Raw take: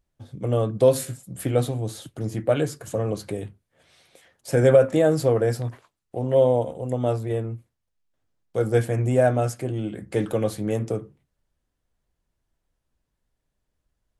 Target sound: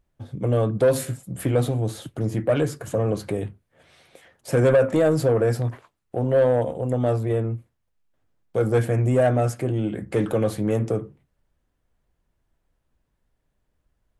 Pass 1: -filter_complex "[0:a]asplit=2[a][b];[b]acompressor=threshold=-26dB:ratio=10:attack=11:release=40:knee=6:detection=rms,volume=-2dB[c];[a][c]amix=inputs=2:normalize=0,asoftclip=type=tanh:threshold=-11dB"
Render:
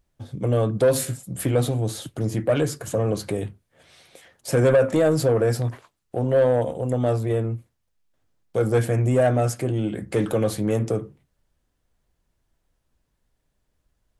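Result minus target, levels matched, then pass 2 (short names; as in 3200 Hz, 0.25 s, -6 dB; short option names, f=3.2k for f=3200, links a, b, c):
4000 Hz band +3.5 dB
-filter_complex "[0:a]asplit=2[a][b];[b]acompressor=threshold=-26dB:ratio=10:attack=11:release=40:knee=6:detection=rms,lowpass=3.4k,volume=-2dB[c];[a][c]amix=inputs=2:normalize=0,asoftclip=type=tanh:threshold=-11dB"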